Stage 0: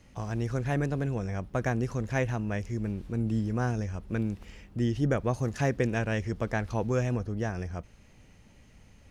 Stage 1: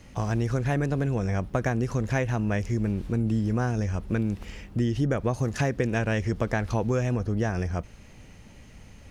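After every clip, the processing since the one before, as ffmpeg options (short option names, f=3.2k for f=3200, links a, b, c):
-af "acompressor=threshold=-29dB:ratio=6,volume=7.5dB"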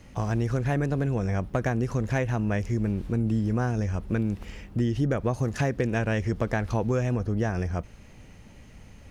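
-af "equalizer=f=5.7k:t=o:w=2.5:g=-2.5,asoftclip=type=hard:threshold=-16dB"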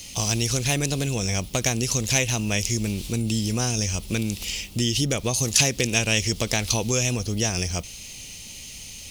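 -af "aexciter=amount=9.3:drive=8.1:freq=2.5k"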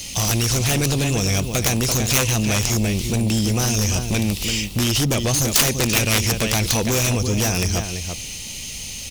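-filter_complex "[0:a]asplit=2[a][b];[b]adelay=338.2,volume=-9dB,highshelf=f=4k:g=-7.61[c];[a][c]amix=inputs=2:normalize=0,aeval=exprs='0.631*(cos(1*acos(clip(val(0)/0.631,-1,1)))-cos(1*PI/2))+0.282*(cos(7*acos(clip(val(0)/0.631,-1,1)))-cos(7*PI/2))':c=same,volume=1dB"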